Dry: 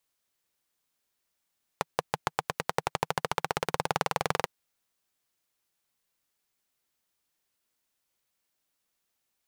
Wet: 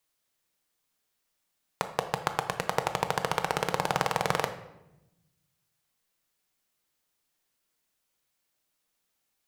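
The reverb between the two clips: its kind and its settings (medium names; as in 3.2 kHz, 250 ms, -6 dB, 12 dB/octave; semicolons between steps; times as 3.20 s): simulated room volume 350 m³, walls mixed, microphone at 0.52 m; trim +1 dB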